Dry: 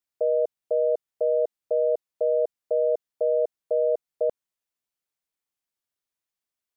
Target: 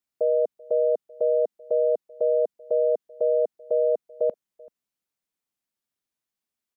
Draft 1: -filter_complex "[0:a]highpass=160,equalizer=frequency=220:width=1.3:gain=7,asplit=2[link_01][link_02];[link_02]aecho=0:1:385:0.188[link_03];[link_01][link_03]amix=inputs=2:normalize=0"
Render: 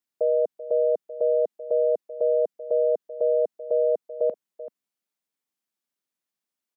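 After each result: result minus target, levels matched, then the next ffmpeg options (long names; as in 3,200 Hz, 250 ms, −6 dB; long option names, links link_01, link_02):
echo-to-direct +9.5 dB; 125 Hz band −3.5 dB
-filter_complex "[0:a]highpass=160,equalizer=frequency=220:width=1.3:gain=7,asplit=2[link_01][link_02];[link_02]aecho=0:1:385:0.0631[link_03];[link_01][link_03]amix=inputs=2:normalize=0"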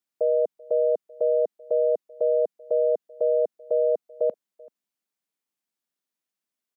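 125 Hz band −3.5 dB
-filter_complex "[0:a]equalizer=frequency=220:width=1.3:gain=7,asplit=2[link_01][link_02];[link_02]aecho=0:1:385:0.0631[link_03];[link_01][link_03]amix=inputs=2:normalize=0"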